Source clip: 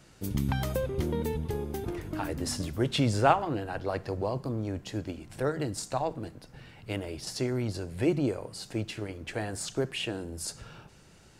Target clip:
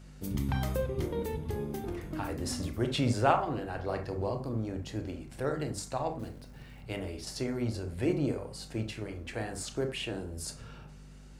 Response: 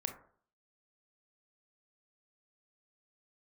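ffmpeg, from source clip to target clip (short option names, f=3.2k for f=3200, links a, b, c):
-filter_complex "[0:a]aeval=exprs='val(0)+0.00501*(sin(2*PI*50*n/s)+sin(2*PI*2*50*n/s)/2+sin(2*PI*3*50*n/s)/3+sin(2*PI*4*50*n/s)/4+sin(2*PI*5*50*n/s)/5)':c=same,asettb=1/sr,asplit=3[a][b][c];[a]atrim=end=6.194[d];[b]atrim=start=6.19:end=6.82,asetpts=PTS-STARTPTS,afade=t=in:d=0.004:c=qsin,afade=t=out:st=0.626:d=0.004:c=qsin,acrusher=bits=5:mode=log:mix=0:aa=0.000001[e];[c]atrim=start=6.816[f];[d][e]acrossfade=d=0.004:c1=hsin:c2=qsin[g];[g][f]acrossfade=d=0.004:c1=qsin:c2=hsin[h];[1:a]atrim=start_sample=2205,afade=t=out:st=0.15:d=0.01,atrim=end_sample=7056[i];[h][i]afir=irnorm=-1:irlink=0,volume=-2.5dB"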